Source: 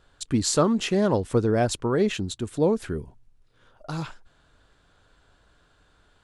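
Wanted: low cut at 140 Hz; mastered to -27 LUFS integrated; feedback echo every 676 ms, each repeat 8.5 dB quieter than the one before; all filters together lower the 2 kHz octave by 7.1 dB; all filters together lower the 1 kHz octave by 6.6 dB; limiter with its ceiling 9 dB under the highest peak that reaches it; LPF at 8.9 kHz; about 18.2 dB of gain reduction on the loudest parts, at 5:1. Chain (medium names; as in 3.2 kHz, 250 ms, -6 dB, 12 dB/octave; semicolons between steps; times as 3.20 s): high-pass 140 Hz; low-pass 8.9 kHz; peaking EQ 1 kHz -7.5 dB; peaking EQ 2 kHz -7.5 dB; compression 5:1, threshold -40 dBFS; peak limiter -36 dBFS; feedback delay 676 ms, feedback 38%, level -8.5 dB; trim +19 dB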